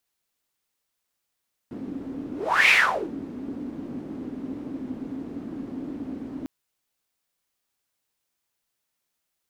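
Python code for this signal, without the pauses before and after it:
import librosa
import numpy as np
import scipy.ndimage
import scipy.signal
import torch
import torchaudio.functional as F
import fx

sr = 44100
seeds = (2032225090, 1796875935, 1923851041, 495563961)

y = fx.whoosh(sr, seeds[0], length_s=4.75, peak_s=0.99, rise_s=0.39, fall_s=0.44, ends_hz=270.0, peak_hz=2400.0, q=7.2, swell_db=18)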